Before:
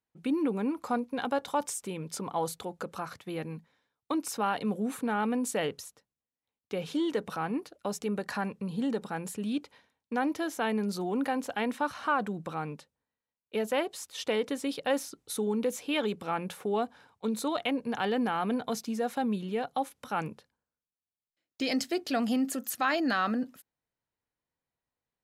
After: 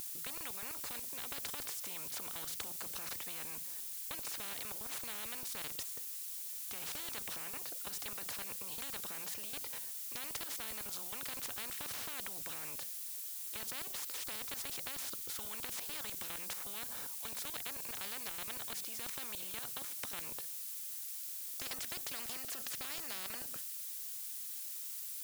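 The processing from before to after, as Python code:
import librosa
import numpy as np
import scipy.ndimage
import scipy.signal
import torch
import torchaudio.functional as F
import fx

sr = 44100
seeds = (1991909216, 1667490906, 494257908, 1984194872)

y = fx.level_steps(x, sr, step_db=15)
y = fx.dmg_noise_colour(y, sr, seeds[0], colour='violet', level_db=-53.0)
y = fx.spectral_comp(y, sr, ratio=10.0)
y = y * librosa.db_to_amplitude(-4.0)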